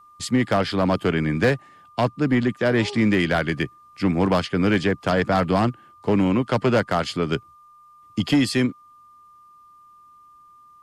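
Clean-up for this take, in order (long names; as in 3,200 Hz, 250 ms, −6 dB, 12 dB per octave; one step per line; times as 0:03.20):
clipped peaks rebuilt −12.5 dBFS
notch filter 1,200 Hz, Q 30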